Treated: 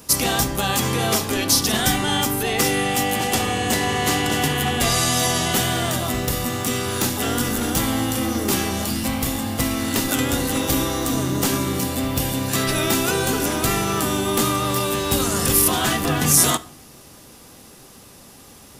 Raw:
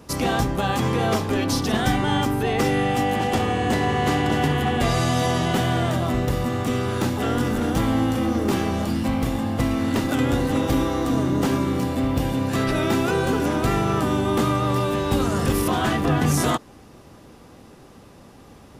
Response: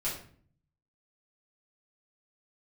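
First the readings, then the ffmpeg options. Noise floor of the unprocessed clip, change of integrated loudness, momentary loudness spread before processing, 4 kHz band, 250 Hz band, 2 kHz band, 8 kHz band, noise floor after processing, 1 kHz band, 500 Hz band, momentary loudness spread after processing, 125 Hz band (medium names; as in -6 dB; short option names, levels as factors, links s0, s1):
-47 dBFS, +2.0 dB, 3 LU, +7.5 dB, -1.5 dB, +3.5 dB, +13.5 dB, -45 dBFS, 0.0 dB, -1.0 dB, 6 LU, -2.5 dB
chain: -filter_complex "[0:a]crystalizer=i=5:c=0,asplit=2[s0][s1];[1:a]atrim=start_sample=2205[s2];[s1][s2]afir=irnorm=-1:irlink=0,volume=0.126[s3];[s0][s3]amix=inputs=2:normalize=0,volume=0.75"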